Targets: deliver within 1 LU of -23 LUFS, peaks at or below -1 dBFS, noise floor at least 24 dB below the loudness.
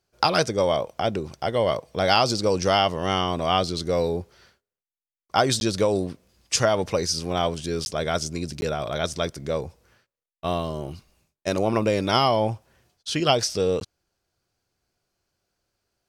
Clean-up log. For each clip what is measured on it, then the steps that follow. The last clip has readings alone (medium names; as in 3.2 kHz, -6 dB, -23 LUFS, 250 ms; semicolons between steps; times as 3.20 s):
dropouts 4; longest dropout 11 ms; loudness -24.0 LUFS; peak level -3.5 dBFS; loudness target -23.0 LUFS
-> interpolate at 5.60/7.85/8.61/13.80 s, 11 ms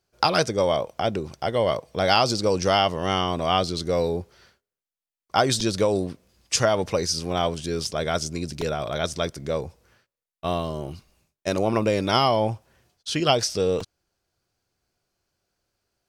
dropouts 0; loudness -24.0 LUFS; peak level -3.5 dBFS; loudness target -23.0 LUFS
-> trim +1 dB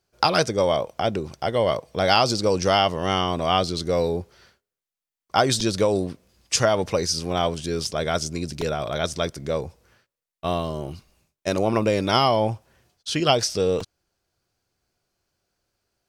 loudness -23.0 LUFS; peak level -2.5 dBFS; noise floor -88 dBFS